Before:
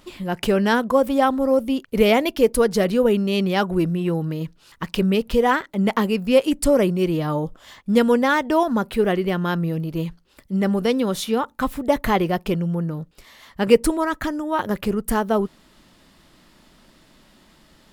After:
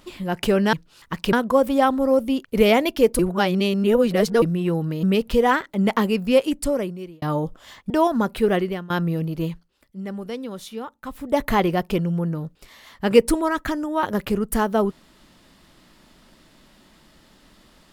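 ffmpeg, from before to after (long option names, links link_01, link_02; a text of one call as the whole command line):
ffmpeg -i in.wav -filter_complex "[0:a]asplit=11[link_01][link_02][link_03][link_04][link_05][link_06][link_07][link_08][link_09][link_10][link_11];[link_01]atrim=end=0.732[link_12];[link_02]atrim=start=4.428:end=5.032[link_13];[link_03]atrim=start=0.728:end=2.592[link_14];[link_04]atrim=start=2.588:end=3.822,asetpts=PTS-STARTPTS,areverse[link_15];[link_05]atrim=start=3.818:end=4.432[link_16];[link_06]atrim=start=5.028:end=7.22,asetpts=PTS-STARTPTS,afade=type=out:start_time=1.222:duration=0.97[link_17];[link_07]atrim=start=7.22:end=7.902,asetpts=PTS-STARTPTS,afade=type=in:duration=0.004:curve=hsin[link_18];[link_08]atrim=start=8.458:end=9.46,asetpts=PTS-STARTPTS,afade=type=out:start_time=0.682:duration=0.32:silence=0.0794328[link_19];[link_09]atrim=start=9.46:end=10.31,asetpts=PTS-STARTPTS,afade=type=in:duration=0.004:curve=hsin:silence=0.0794328,afade=type=out:start_time=0.53:duration=0.32:silence=0.281838[link_20];[link_10]atrim=start=10.31:end=11.67,asetpts=PTS-STARTPTS,volume=-11dB[link_21];[link_11]atrim=start=11.67,asetpts=PTS-STARTPTS,afade=type=in:duration=0.32:silence=0.281838[link_22];[link_12][link_13]acrossfade=duration=0.004:curve1=hsin:curve2=hsin[link_23];[link_23][link_14]acrossfade=duration=0.004:curve1=hsin:curve2=hsin[link_24];[link_24][link_15]acrossfade=duration=0.004:curve1=hsin:curve2=hsin[link_25];[link_25][link_16]acrossfade=duration=0.004:curve1=hsin:curve2=hsin[link_26];[link_17][link_18]concat=n=2:v=0:a=1[link_27];[link_26][link_27]acrossfade=duration=0.004:curve1=hsin:curve2=hsin[link_28];[link_19][link_20][link_21][link_22]concat=n=4:v=0:a=1[link_29];[link_28][link_29]acrossfade=duration=0.004:curve1=hsin:curve2=hsin" out.wav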